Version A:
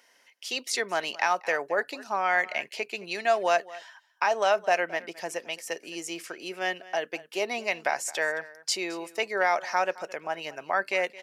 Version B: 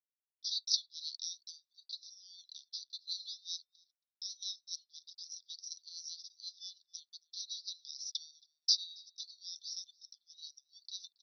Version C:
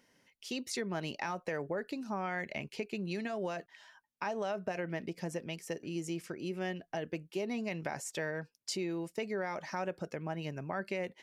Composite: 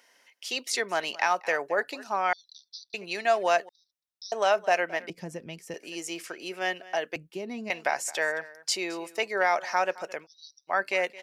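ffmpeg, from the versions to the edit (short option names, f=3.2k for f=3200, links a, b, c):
-filter_complex "[1:a]asplit=3[a][b][c];[2:a]asplit=2[d][e];[0:a]asplit=6[f][g][h][i][j][k];[f]atrim=end=2.332[l];[a]atrim=start=2.328:end=2.942[m];[g]atrim=start=2.938:end=3.692[n];[b]atrim=start=3.688:end=4.322[o];[h]atrim=start=4.318:end=5.102[p];[d]atrim=start=5.098:end=5.742[q];[i]atrim=start=5.738:end=7.162[r];[e]atrim=start=7.158:end=7.702[s];[j]atrim=start=7.698:end=10.27[t];[c]atrim=start=10.21:end=10.73[u];[k]atrim=start=10.67[v];[l][m]acrossfade=d=0.004:c1=hsin:c2=hsin[w];[w][n]acrossfade=d=0.004:c1=hsin:c2=hsin[x];[x][o]acrossfade=d=0.004:c1=hsin:c2=hsin[y];[y][p]acrossfade=d=0.004:c1=hsin:c2=hsin[z];[z][q]acrossfade=d=0.004:c1=hsin:c2=hsin[aa];[aa][r]acrossfade=d=0.004:c1=hsin:c2=hsin[ab];[ab][s]acrossfade=d=0.004:c1=hsin:c2=hsin[ac];[ac][t]acrossfade=d=0.004:c1=hsin:c2=hsin[ad];[ad][u]acrossfade=d=0.06:c1=tri:c2=tri[ae];[ae][v]acrossfade=d=0.06:c1=tri:c2=tri"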